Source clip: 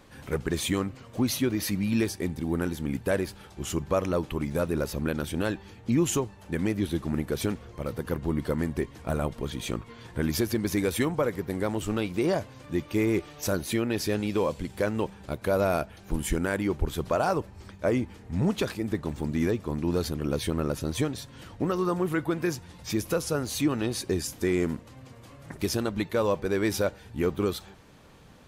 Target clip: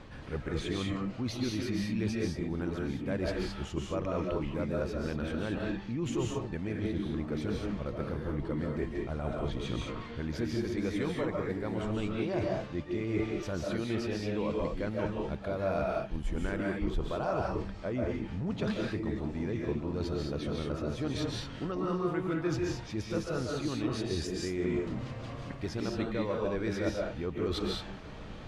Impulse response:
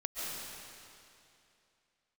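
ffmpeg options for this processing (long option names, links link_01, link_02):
-filter_complex "[0:a]lowpass=4400,lowshelf=frequency=120:gain=7.5,areverse,acompressor=threshold=-37dB:ratio=5,areverse[link_01];[1:a]atrim=start_sample=2205,afade=type=out:start_time=0.28:duration=0.01,atrim=end_sample=12789[link_02];[link_01][link_02]afir=irnorm=-1:irlink=0,volume=6.5dB"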